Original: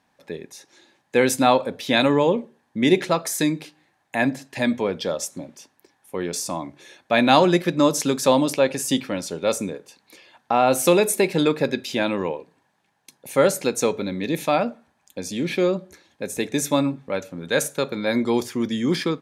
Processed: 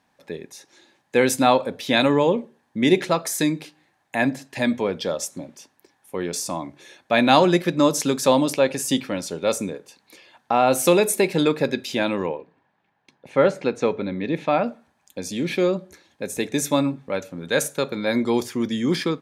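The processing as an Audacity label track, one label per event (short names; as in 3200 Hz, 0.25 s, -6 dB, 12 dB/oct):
12.260000	14.640000	LPF 2800 Hz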